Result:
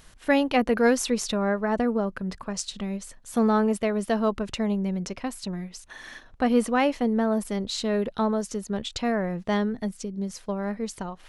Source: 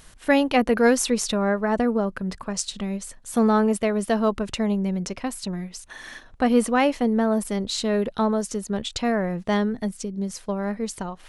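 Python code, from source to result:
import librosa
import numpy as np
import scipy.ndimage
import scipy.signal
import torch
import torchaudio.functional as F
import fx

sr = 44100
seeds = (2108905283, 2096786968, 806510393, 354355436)

y = fx.peak_eq(x, sr, hz=9200.0, db=-4.0, octaves=0.68)
y = F.gain(torch.from_numpy(y), -2.5).numpy()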